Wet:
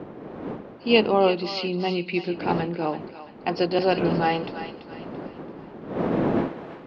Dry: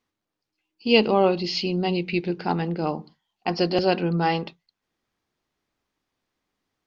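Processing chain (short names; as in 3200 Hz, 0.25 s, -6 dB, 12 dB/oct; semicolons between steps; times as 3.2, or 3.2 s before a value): wind noise 360 Hz -29 dBFS; three-band isolator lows -20 dB, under 160 Hz, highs -17 dB, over 4600 Hz; thinning echo 0.336 s, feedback 45%, high-pass 1100 Hz, level -9 dB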